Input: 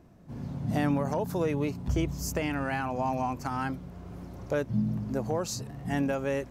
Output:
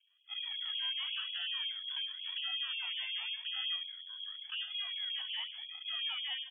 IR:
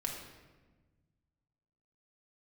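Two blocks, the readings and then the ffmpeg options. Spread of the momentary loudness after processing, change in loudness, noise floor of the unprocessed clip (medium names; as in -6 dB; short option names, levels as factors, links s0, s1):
6 LU, -5.5 dB, -47 dBFS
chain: -filter_complex "[0:a]highpass=f=130:w=0.5412,highpass=f=130:w=1.3066,afwtdn=0.0224,equalizer=f=2400:t=o:w=1.7:g=-15,aecho=1:1:3.6:0.7,acrossover=split=290|1100[s0][s1][s2];[s2]acompressor=threshold=0.00158:ratio=6[s3];[s0][s1][s3]amix=inputs=3:normalize=0,alimiter=level_in=1.58:limit=0.0631:level=0:latency=1:release=363,volume=0.631,crystalizer=i=3:c=0,acrusher=samples=28:mix=1:aa=0.000001:lfo=1:lforange=16.8:lforate=0.9,asoftclip=type=hard:threshold=0.0158,asplit=2[s4][s5];[s5]adelay=68,lowpass=f=1700:p=1,volume=0.422,asplit=2[s6][s7];[s7]adelay=68,lowpass=f=1700:p=1,volume=0.37,asplit=2[s8][s9];[s9]adelay=68,lowpass=f=1700:p=1,volume=0.37,asplit=2[s10][s11];[s11]adelay=68,lowpass=f=1700:p=1,volume=0.37[s12];[s6][s8][s10][s12]amix=inputs=4:normalize=0[s13];[s4][s13]amix=inputs=2:normalize=0,lowpass=f=3000:t=q:w=0.5098,lowpass=f=3000:t=q:w=0.6013,lowpass=f=3000:t=q:w=0.9,lowpass=f=3000:t=q:w=2.563,afreqshift=-3500,afftfilt=real='re*gte(b*sr/1024,620*pow(2400/620,0.5+0.5*sin(2*PI*5.5*pts/sr)))':imag='im*gte(b*sr/1024,620*pow(2400/620,0.5+0.5*sin(2*PI*5.5*pts/sr)))':win_size=1024:overlap=0.75"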